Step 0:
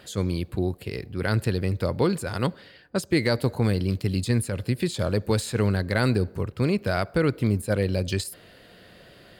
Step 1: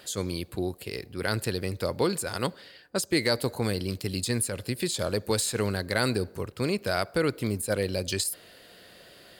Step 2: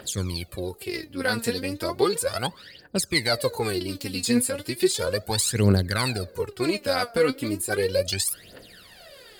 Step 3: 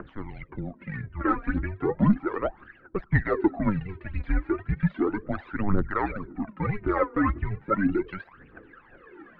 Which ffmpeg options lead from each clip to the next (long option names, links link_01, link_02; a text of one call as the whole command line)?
ffmpeg -i in.wav -af "bass=frequency=250:gain=-7,treble=frequency=4000:gain=8,volume=-1.5dB" out.wav
ffmpeg -i in.wav -af "aphaser=in_gain=1:out_gain=1:delay=4.4:decay=0.78:speed=0.35:type=triangular" out.wav
ffmpeg -i in.wav -af "aphaser=in_gain=1:out_gain=1:delay=2:decay=0.61:speed=1.9:type=triangular,highpass=frequency=180:width_type=q:width=0.5412,highpass=frequency=180:width_type=q:width=1.307,lowpass=frequency=2100:width_type=q:width=0.5176,lowpass=frequency=2100:width_type=q:width=0.7071,lowpass=frequency=2100:width_type=q:width=1.932,afreqshift=-200" out.wav